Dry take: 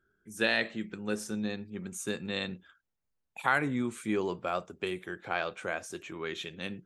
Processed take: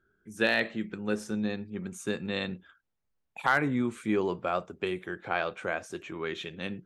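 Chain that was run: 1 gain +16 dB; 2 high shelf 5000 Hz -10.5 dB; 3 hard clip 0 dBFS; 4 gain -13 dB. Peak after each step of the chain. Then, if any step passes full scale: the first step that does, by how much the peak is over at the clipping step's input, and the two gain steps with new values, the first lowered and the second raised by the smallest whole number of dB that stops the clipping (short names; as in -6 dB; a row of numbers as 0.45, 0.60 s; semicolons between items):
+5.0, +4.5, 0.0, -13.0 dBFS; step 1, 4.5 dB; step 1 +11 dB, step 4 -8 dB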